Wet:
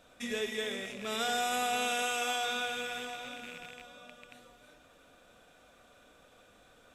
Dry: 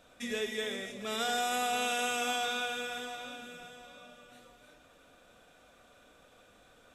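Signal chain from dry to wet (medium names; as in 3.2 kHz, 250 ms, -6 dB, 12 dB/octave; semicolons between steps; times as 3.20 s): rattle on loud lows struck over -58 dBFS, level -34 dBFS; 2.02–2.49 s: peaking EQ 180 Hz -14.5 dB 0.67 oct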